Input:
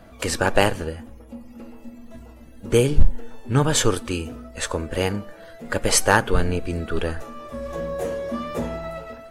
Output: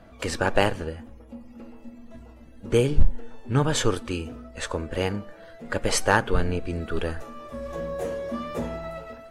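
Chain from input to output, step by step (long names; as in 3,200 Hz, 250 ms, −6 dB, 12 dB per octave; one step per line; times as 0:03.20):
high-shelf EQ 8,800 Hz −12 dB, from 0:06.81 −3.5 dB
level −3 dB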